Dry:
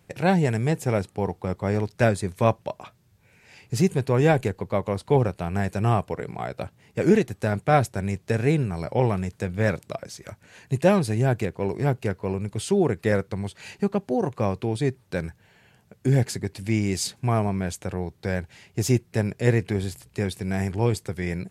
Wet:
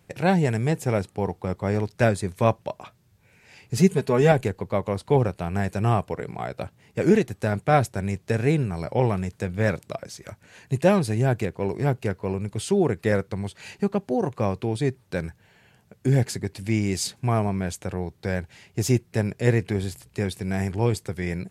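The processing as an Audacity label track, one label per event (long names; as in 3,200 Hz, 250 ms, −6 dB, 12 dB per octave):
3.770000	4.320000	comb filter 4.7 ms, depth 69%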